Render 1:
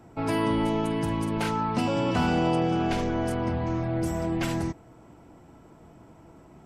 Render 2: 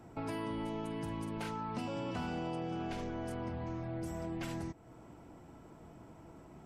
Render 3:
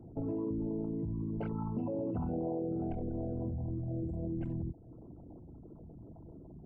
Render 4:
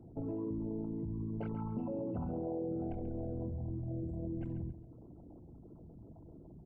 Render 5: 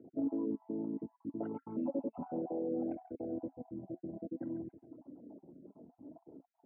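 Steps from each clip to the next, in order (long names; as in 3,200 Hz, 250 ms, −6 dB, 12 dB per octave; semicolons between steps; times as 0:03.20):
downward compressor 2.5 to 1, threshold −38 dBFS, peak gain reduction 12 dB; level −3 dB
spectral envelope exaggerated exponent 3; level +3.5 dB
repeating echo 136 ms, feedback 29%, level −11.5 dB; level −3 dB
time-frequency cells dropped at random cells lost 29%; flanger 0.63 Hz, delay 2.2 ms, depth 3.5 ms, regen +54%; loudspeaker in its box 250–2,200 Hz, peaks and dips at 270 Hz +9 dB, 580 Hz +4 dB, 1,200 Hz −6 dB; level +5.5 dB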